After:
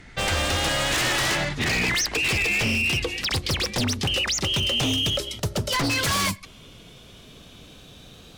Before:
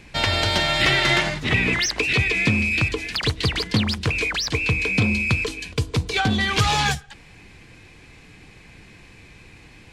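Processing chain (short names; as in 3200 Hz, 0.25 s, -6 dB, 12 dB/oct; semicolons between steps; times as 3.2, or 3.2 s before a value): speed glide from 84% -> 153%; wavefolder -18 dBFS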